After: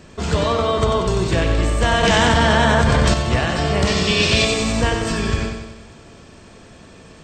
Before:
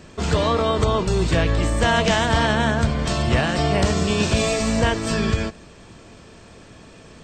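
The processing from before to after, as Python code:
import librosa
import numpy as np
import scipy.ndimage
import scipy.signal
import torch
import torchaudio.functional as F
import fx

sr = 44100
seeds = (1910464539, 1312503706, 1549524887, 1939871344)

y = fx.band_shelf(x, sr, hz=3200.0, db=8.5, octaves=1.7, at=(3.87, 4.45))
y = fx.echo_feedback(y, sr, ms=93, feedback_pct=56, wet_db=-6.0)
y = fx.env_flatten(y, sr, amount_pct=100, at=(2.03, 3.14))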